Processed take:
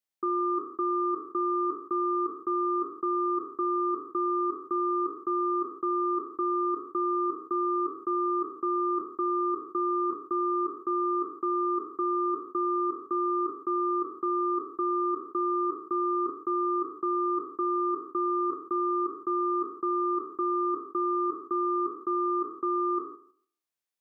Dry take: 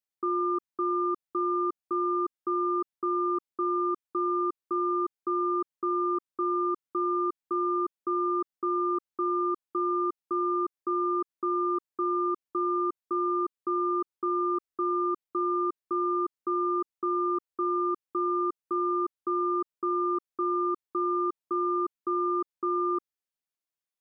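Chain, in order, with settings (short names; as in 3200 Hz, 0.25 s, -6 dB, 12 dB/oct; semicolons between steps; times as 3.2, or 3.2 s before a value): spectral trails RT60 0.55 s; tone controls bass -3 dB, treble 0 dB; in parallel at +2.5 dB: level quantiser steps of 16 dB; on the sum: gain -5 dB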